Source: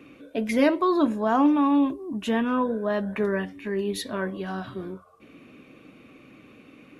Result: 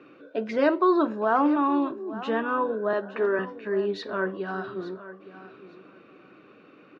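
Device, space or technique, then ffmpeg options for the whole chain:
kitchen radio: -filter_complex "[0:a]asettb=1/sr,asplit=3[s0][s1][s2];[s0]atrim=end=2.934[s3];[s1]atrim=start=2.93:end=3.39,asetpts=PTS-STARTPTS,afade=t=in:d=0.004:c=qsin,afade=t=out:st=0.456:d=0.004:c=qsin,highpass=f=250:w=0.5412,highpass=f=250:w=1.3066[s4];[s2]atrim=start=3.386[s5];[s3][s4]acrossfade=d=0.004:c1=hsin:c2=qsin[s6];[s6][s5]acrossfade=d=0.004:c1=qsin:c2=hsin,highpass=190,equalizer=f=250:t=q:w=4:g=-9,equalizer=f=380:t=q:w=4:g=4,equalizer=f=1400:t=q:w=4:g=7,equalizer=f=2200:t=q:w=4:g=-8,equalizer=f=3300:t=q:w=4:g=-7,lowpass=f=4400:w=0.5412,lowpass=f=4400:w=1.3066,aecho=1:1:865|1730:0.178|0.032"

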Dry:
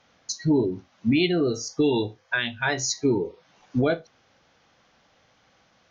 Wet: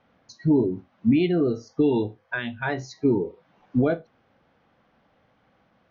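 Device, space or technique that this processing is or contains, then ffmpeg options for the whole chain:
phone in a pocket: -af "lowpass=3600,equalizer=f=220:t=o:w=0.88:g=3.5,highshelf=f=2200:g=-11"

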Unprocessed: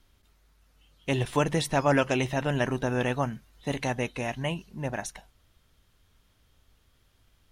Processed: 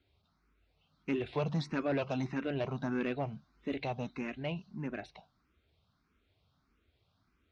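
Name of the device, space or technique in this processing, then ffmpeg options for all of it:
barber-pole phaser into a guitar amplifier: -filter_complex "[0:a]asplit=2[s0][s1];[s1]afreqshift=1.6[s2];[s0][s2]amix=inputs=2:normalize=1,asoftclip=type=tanh:threshold=0.075,highpass=86,equalizer=f=120:t=q:w=4:g=-5,equalizer=f=530:t=q:w=4:g=-6,equalizer=f=910:t=q:w=4:g=-5,equalizer=f=1800:t=q:w=4:g=-9,equalizer=f=3100:t=q:w=4:g=-9,lowpass=f=4100:w=0.5412,lowpass=f=4100:w=1.3066"

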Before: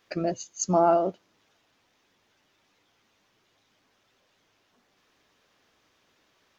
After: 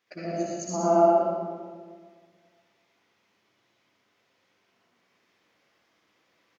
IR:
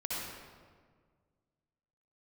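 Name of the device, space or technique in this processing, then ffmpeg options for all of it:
PA in a hall: -filter_complex "[0:a]highpass=120,equalizer=f=2100:t=o:w=0.36:g=4.5,aecho=1:1:118:0.531[s0];[1:a]atrim=start_sample=2205[s1];[s0][s1]afir=irnorm=-1:irlink=0,volume=0.447"

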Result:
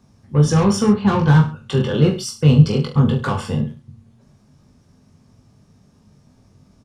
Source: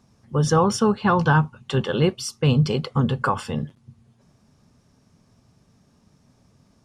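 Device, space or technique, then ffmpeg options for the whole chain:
one-band saturation: -filter_complex "[0:a]asettb=1/sr,asplit=3[s0][s1][s2];[s0]atrim=end=0.864[s3];[s1]atrim=start=0.86:end=1.36,asetpts=PTS-STARTPTS,afade=t=in:d=0.004:c=qsin,afade=t=out:st=0.496:d=0.004:c=qsin,aemphasis=mode=reproduction:type=50fm[s4];[s2]atrim=start=1.356[s5];[s3][s4]acrossfade=d=0.004:c1=hsin:c2=qsin[s6];[s6][s5]acrossfade=d=0.004:c1=qsin:c2=hsin,acrossover=split=350|3900[s7][s8][s9];[s8]asoftclip=type=tanh:threshold=0.0794[s10];[s7][s10][s9]amix=inputs=3:normalize=0,lowshelf=f=330:g=5.5,aecho=1:1:20|43|69.45|99.87|134.8:0.631|0.398|0.251|0.158|0.1"

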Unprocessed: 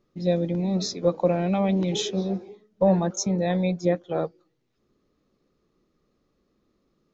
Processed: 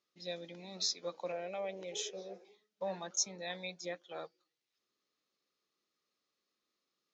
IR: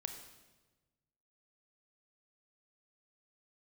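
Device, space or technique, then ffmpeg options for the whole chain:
piezo pickup straight into a mixer: -filter_complex "[0:a]asettb=1/sr,asplit=3[s0][s1][s2];[s0]atrim=end=1.324[s3];[s1]atrim=start=1.32:end=2.45,asetpts=PTS-STARTPTS,afade=t=in:d=0.004:c=qsin,afade=t=out:st=1.126:d=0.004:c=qsin,equalizer=f=250:t=o:w=1:g=-9,equalizer=f=500:t=o:w=1:g=12,equalizer=f=1000:t=o:w=1:g=-6,equalizer=f=4000:t=o:w=1:g=-11[s4];[s2]atrim=start=2.446[s5];[s3][s4]acrossfade=d=0.004:c1=hsin:c2=qsin[s6];[s6][s5]acrossfade=d=0.004:c1=qsin:c2=hsin,lowpass=5000,aderivative,volume=1.58"

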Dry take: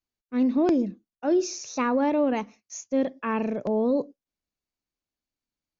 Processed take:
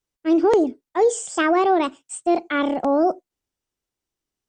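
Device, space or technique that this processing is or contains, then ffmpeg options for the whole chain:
nightcore: -af "asetrate=56889,aresample=44100,volume=1.88"

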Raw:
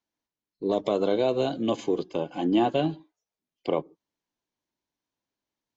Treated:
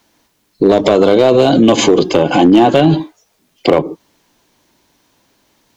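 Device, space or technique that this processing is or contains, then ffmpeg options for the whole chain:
loud club master: -af "acompressor=threshold=0.0501:ratio=3,asoftclip=type=hard:threshold=0.0794,alimiter=level_in=39.8:limit=0.891:release=50:level=0:latency=1,volume=0.891"

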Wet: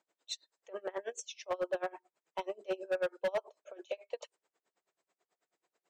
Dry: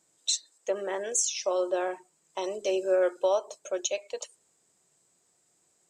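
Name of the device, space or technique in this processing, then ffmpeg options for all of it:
helicopter radio: -af "highpass=390,lowpass=2900,aeval=exprs='val(0)*pow(10,-28*(0.5-0.5*cos(2*PI*9.2*n/s))/20)':c=same,asoftclip=type=hard:threshold=0.0376,volume=1.12"

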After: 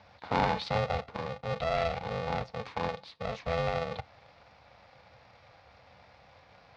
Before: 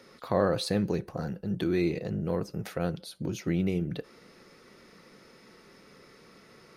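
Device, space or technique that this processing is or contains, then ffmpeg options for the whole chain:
ring modulator pedal into a guitar cabinet: -af "aeval=exprs='val(0)*sgn(sin(2*PI*330*n/s))':c=same,highpass=76,equalizer=f=77:t=q:w=4:g=5,equalizer=f=160:t=q:w=4:g=-8,equalizer=f=230:t=q:w=4:g=-5,equalizer=f=360:t=q:w=4:g=-9,equalizer=f=1600:t=q:w=4:g=-6,equalizer=f=3000:t=q:w=4:g=-6,lowpass=f=4100:w=0.5412,lowpass=f=4100:w=1.3066"

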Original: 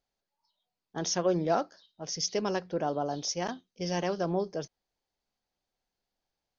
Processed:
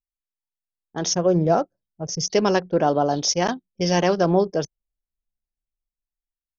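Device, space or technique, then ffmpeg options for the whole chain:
voice memo with heavy noise removal: -filter_complex "[0:a]asettb=1/sr,asplit=3[s0][s1][s2];[s0]atrim=end=1.134[s3];[s1]atrim=start=1.13:end=2.3,asetpts=PTS-STARTPTS,afade=t=in:d=0.004:c=qsin,afade=t=out:st=1.166:d=0.004:c=qsin,equalizer=f=125:t=o:w=1:g=7,equalizer=f=250:t=o:w=1:g=-4,equalizer=f=1000:t=o:w=1:g=-4,equalizer=f=2000:t=o:w=1:g=-7,equalizer=f=4000:t=o:w=1:g=-11[s4];[s2]atrim=start=2.296[s5];[s3][s4]acrossfade=d=0.004:c1=hsin:c2=qsin[s6];[s6][s5]acrossfade=d=0.004:c1=qsin:c2=hsin,anlmdn=0.0398,dynaudnorm=f=300:g=7:m=3.76"

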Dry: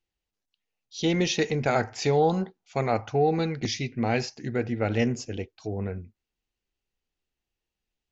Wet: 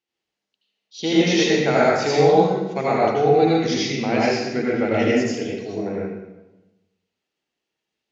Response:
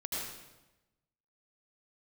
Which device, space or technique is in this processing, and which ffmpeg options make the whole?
supermarket ceiling speaker: -filter_complex "[0:a]highpass=210,lowpass=6600[s0];[1:a]atrim=start_sample=2205[s1];[s0][s1]afir=irnorm=-1:irlink=0,volume=1.78"

